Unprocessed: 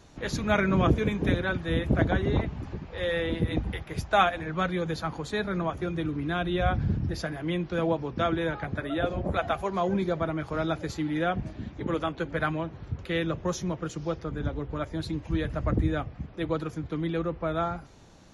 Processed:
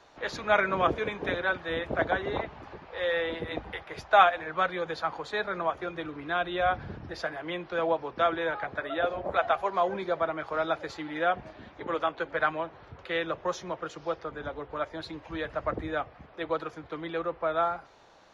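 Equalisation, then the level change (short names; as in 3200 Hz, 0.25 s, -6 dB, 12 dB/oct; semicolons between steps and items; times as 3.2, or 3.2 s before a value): three-band isolator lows -20 dB, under 470 Hz, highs -19 dB, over 4500 Hz; bell 2600 Hz -4 dB 1.3 oct; +4.5 dB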